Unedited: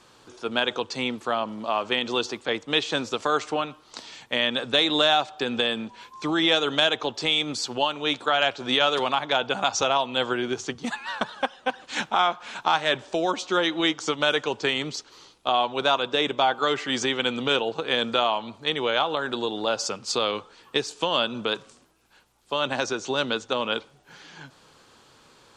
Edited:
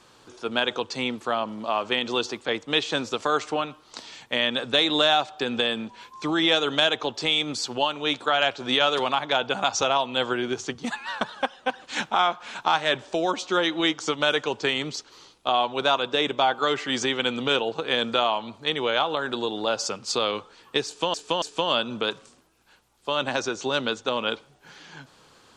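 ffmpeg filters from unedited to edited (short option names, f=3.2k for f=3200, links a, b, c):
-filter_complex "[0:a]asplit=3[a][b][c];[a]atrim=end=21.142[d];[b]atrim=start=20.858:end=21.142[e];[c]atrim=start=20.858[f];[d][e]acrossfade=d=0.004:c1=hsin:c2=hsin[g];[g][f]acrossfade=d=0.004:c1=hsin:c2=hsin"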